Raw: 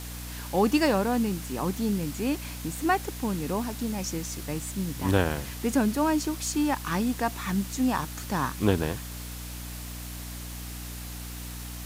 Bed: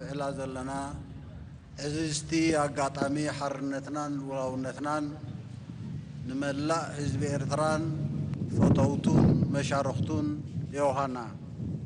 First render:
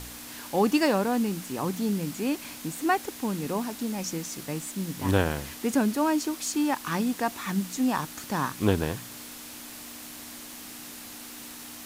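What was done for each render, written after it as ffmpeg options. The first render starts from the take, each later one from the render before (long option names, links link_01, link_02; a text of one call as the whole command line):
ffmpeg -i in.wav -af "bandreject=frequency=60:width_type=h:width=4,bandreject=frequency=120:width_type=h:width=4,bandreject=frequency=180:width_type=h:width=4" out.wav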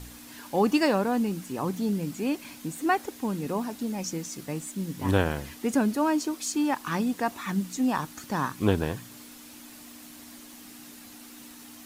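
ffmpeg -i in.wav -af "afftdn=noise_reduction=7:noise_floor=-43" out.wav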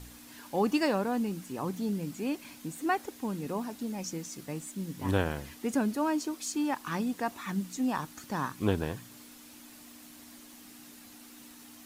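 ffmpeg -i in.wav -af "volume=-4.5dB" out.wav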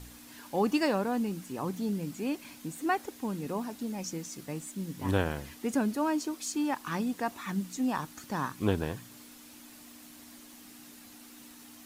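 ffmpeg -i in.wav -af anull out.wav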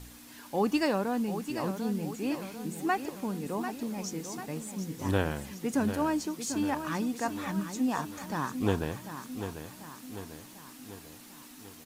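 ffmpeg -i in.wav -af "aecho=1:1:744|1488|2232|2976|3720|4464:0.335|0.181|0.0977|0.0527|0.0285|0.0154" out.wav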